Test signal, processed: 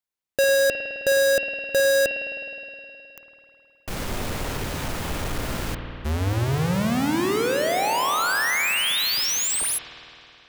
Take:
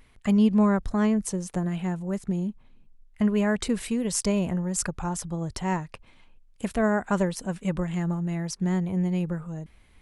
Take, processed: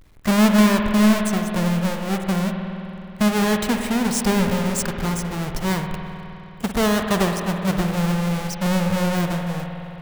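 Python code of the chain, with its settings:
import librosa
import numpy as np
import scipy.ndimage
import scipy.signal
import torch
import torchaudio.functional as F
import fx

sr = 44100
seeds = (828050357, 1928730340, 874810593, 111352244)

y = fx.halfwave_hold(x, sr)
y = fx.rev_spring(y, sr, rt60_s=3.1, pass_ms=(52,), chirp_ms=75, drr_db=3.5)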